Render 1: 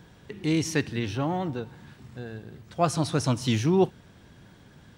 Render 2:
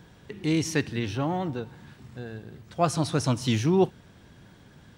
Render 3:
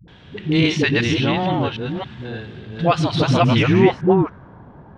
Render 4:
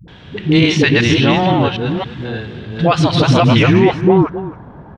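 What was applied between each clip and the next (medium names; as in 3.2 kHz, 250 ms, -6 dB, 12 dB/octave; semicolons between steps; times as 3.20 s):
no audible change
chunks repeated in reverse 281 ms, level -1 dB; low-pass sweep 3.3 kHz -> 940 Hz, 3.23–4.55 s; phase dispersion highs, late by 81 ms, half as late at 330 Hz; trim +6.5 dB
delay 266 ms -16 dB; loudness maximiser +7.5 dB; trim -1 dB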